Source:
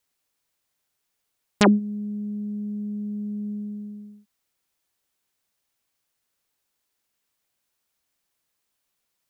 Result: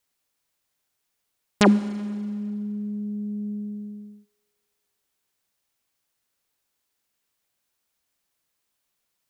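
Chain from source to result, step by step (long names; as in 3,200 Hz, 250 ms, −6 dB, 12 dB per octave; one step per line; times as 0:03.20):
four-comb reverb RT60 2.1 s, combs from 32 ms, DRR 15.5 dB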